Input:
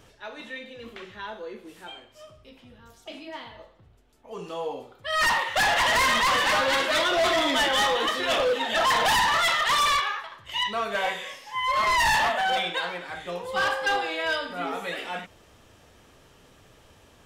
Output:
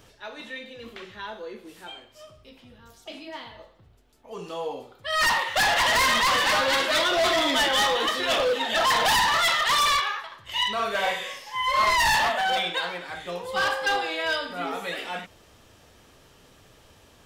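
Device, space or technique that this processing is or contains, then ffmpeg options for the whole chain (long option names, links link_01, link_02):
presence and air boost: -filter_complex "[0:a]equalizer=frequency=4500:width_type=o:width=0.77:gain=3,highshelf=frequency=12000:gain=6,asettb=1/sr,asplit=3[link_01][link_02][link_03];[link_01]atrim=end=10.424[link_04];[link_02]atrim=start=10.42:end=11.93,asetpts=PTS-STARTPTS,afade=type=in:duration=0.004:curve=qsin,afade=type=out:start_time=1.506:duration=0.004:curve=qsin,asplit=2[link_05][link_06];[link_06]adelay=47,volume=-4.5dB[link_07];[link_05][link_07]amix=inputs=2:normalize=0,atrim=end_sample=66591[link_08];[link_03]atrim=start=11.926[link_09];[link_04][link_08]acrossfade=duration=0.004:curve1=hsin:curve2=qsin[link_10];[link_10][link_09]acrossfade=duration=0.004:curve1=qsin:curve2=hsin"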